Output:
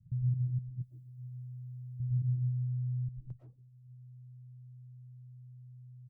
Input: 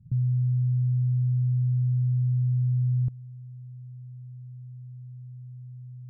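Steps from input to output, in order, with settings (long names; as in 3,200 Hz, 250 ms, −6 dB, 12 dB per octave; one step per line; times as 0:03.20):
0:00.58–0:02.00: spectral tilt +3.5 dB per octave
multiband delay without the direct sound lows, highs 220 ms, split 240 Hz
comb and all-pass reverb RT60 0.72 s, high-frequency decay 0.3×, pre-delay 75 ms, DRR −4.5 dB
reverb reduction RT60 0.5 s
dynamic equaliser 220 Hz, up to −5 dB, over −46 dBFS, Q 4.3
reverb reduction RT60 1.6 s
level −7.5 dB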